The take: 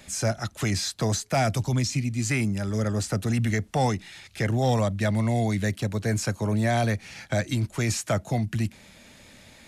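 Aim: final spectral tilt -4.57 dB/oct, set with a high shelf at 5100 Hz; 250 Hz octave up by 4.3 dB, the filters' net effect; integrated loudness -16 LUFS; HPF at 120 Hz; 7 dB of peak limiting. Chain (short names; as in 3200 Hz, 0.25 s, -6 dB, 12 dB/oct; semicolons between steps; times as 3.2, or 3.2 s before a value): HPF 120 Hz; bell 250 Hz +5.5 dB; high shelf 5100 Hz +6.5 dB; gain +11 dB; limiter -6.5 dBFS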